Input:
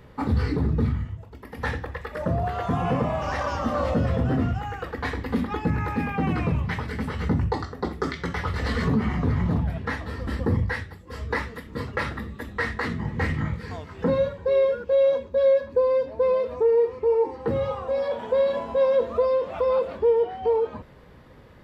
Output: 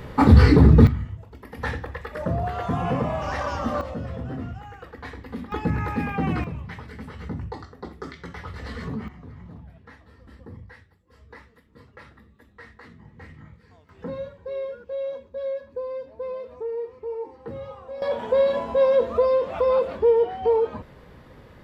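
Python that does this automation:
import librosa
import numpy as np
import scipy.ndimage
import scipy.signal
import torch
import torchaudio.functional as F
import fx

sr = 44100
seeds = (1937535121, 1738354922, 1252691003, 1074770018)

y = fx.gain(x, sr, db=fx.steps((0.0, 11.0), (0.87, -0.5), (3.81, -9.0), (5.52, 0.0), (6.44, -9.0), (9.08, -19.0), (13.89, -10.5), (18.02, 2.0)))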